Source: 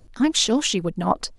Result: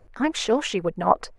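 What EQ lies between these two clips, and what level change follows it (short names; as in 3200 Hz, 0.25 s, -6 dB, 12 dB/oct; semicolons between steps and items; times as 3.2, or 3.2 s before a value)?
low shelf 260 Hz +7.5 dB; band shelf 1000 Hz +13 dB 3 oct; -10.5 dB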